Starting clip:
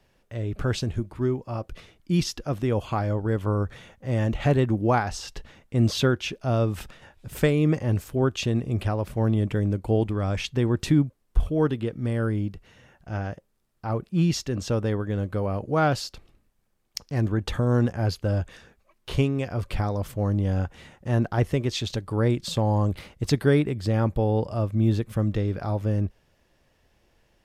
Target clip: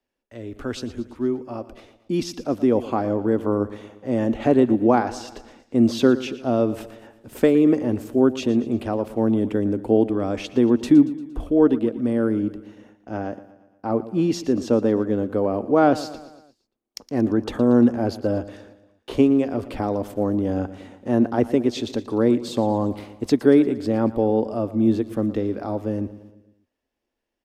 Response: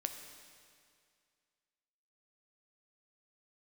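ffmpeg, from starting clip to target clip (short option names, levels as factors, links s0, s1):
-filter_complex "[0:a]agate=range=0.2:threshold=0.002:ratio=16:detection=peak,lowshelf=f=200:t=q:w=3:g=-6.5,acrossover=split=120|970[s0][s1][s2];[s1]dynaudnorm=f=350:g=11:m=3.55[s3];[s0][s3][s2]amix=inputs=3:normalize=0,aecho=1:1:116|232|348|464|580:0.158|0.084|0.0445|0.0236|0.0125,volume=0.708"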